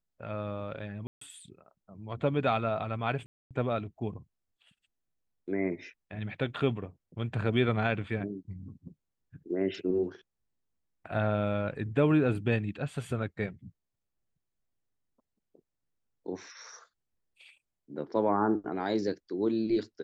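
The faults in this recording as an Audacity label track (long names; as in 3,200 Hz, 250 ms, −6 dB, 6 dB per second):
1.070000	1.210000	drop-out 144 ms
3.260000	3.510000	drop-out 247 ms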